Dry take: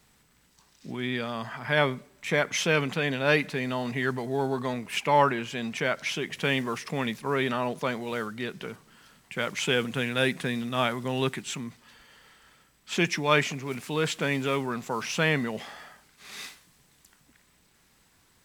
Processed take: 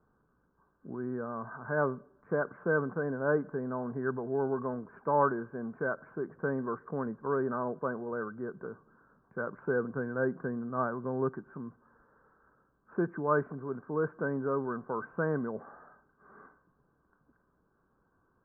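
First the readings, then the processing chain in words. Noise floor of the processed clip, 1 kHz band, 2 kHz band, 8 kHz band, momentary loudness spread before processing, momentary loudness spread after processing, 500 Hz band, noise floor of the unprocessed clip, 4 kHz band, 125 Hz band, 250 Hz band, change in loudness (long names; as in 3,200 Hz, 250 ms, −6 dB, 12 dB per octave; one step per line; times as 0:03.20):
−73 dBFS, −5.5 dB, −9.5 dB, below −40 dB, 12 LU, 10 LU, −3.0 dB, −64 dBFS, below −40 dB, −6.5 dB, −4.5 dB, −5.5 dB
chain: Chebyshev low-pass with heavy ripple 1,600 Hz, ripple 6 dB
level −1.5 dB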